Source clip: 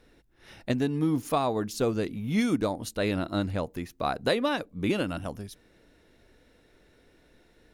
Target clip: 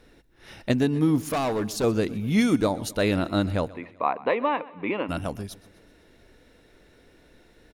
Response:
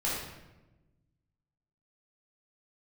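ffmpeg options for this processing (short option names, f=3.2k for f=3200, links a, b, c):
-filter_complex "[0:a]asettb=1/sr,asplit=3[a][b][c];[a]atrim=end=1.204[d];[b]atrim=start=1.2:end=1.84,asetpts=PTS-STARTPTS,afade=t=in:d=0.004:c=qsin,afade=t=out:st=0.636:d=0.004:c=qsin,asoftclip=type=hard:threshold=-27dB[e];[c]atrim=start=1.836[f];[d][e]acrossfade=d=0.004:c1=hsin:c2=qsin[g];[g][f]acrossfade=d=0.004:c1=qsin:c2=hsin,asplit=3[h][i][j];[h]afade=t=out:st=3.7:d=0.02[k];[i]highpass=350,equalizer=f=360:t=q:w=4:g=-4,equalizer=f=650:t=q:w=4:g=-4,equalizer=f=1k:t=q:w=4:g=9,equalizer=f=1.5k:t=q:w=4:g=-10,equalizer=f=2.3k:t=q:w=4:g=5,lowpass=f=2.3k:w=0.5412,lowpass=f=2.3k:w=1.3066,afade=t=in:st=3.7:d=0.02,afade=t=out:st=5.08:d=0.02[l];[j]afade=t=in:st=5.08:d=0.02[m];[k][l][m]amix=inputs=3:normalize=0,aecho=1:1:127|254|381|508:0.1|0.052|0.027|0.0141,volume=4.5dB"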